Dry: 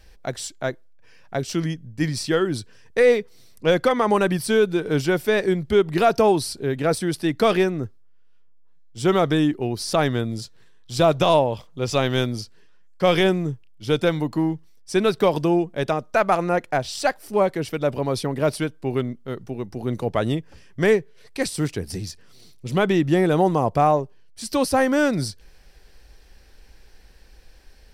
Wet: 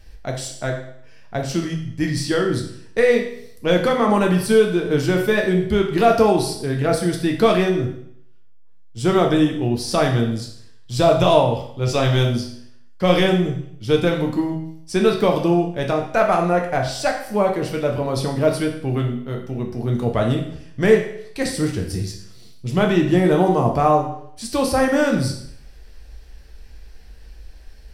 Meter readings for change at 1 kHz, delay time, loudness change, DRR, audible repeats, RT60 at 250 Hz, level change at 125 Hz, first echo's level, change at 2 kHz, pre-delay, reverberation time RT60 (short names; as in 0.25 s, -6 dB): +2.0 dB, none, +2.5 dB, 1.0 dB, none, 0.65 s, +4.5 dB, none, +1.5 dB, 8 ms, 0.65 s